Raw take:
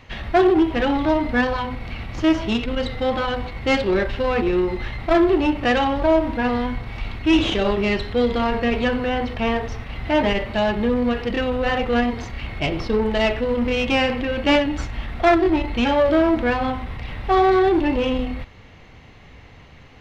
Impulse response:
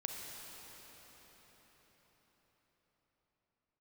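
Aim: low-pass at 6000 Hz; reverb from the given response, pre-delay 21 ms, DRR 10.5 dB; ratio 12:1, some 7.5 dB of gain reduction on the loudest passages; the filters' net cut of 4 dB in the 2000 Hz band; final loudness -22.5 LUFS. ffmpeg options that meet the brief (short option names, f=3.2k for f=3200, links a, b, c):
-filter_complex "[0:a]lowpass=6k,equalizer=f=2k:t=o:g=-5,acompressor=threshold=-20dB:ratio=12,asplit=2[a][b];[1:a]atrim=start_sample=2205,adelay=21[c];[b][c]afir=irnorm=-1:irlink=0,volume=-11dB[d];[a][d]amix=inputs=2:normalize=0,volume=3dB"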